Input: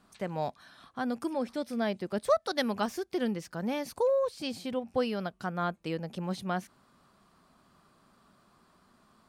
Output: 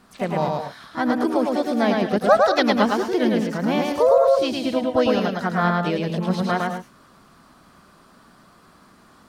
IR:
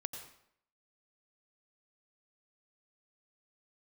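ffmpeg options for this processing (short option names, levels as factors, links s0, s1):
-filter_complex "[0:a]asplit=2[s0][s1];[s1]asetrate=55563,aresample=44100,atempo=0.793701,volume=0.447[s2];[s0][s2]amix=inputs=2:normalize=0,acrossover=split=5000[s3][s4];[s4]acompressor=threshold=0.00158:ratio=4:attack=1:release=60[s5];[s3][s5]amix=inputs=2:normalize=0,asplit=2[s6][s7];[1:a]atrim=start_sample=2205,afade=t=out:st=0.18:d=0.01,atrim=end_sample=8379,adelay=108[s8];[s7][s8]afir=irnorm=-1:irlink=0,volume=0.944[s9];[s6][s9]amix=inputs=2:normalize=0,volume=2.82"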